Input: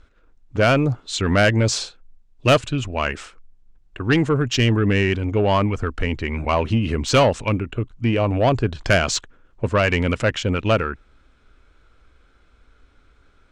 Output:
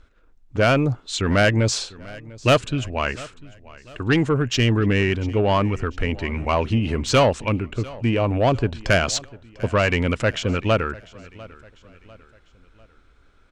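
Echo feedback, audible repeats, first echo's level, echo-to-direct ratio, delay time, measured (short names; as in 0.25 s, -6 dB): 44%, 2, -21.0 dB, -20.0 dB, 0.697 s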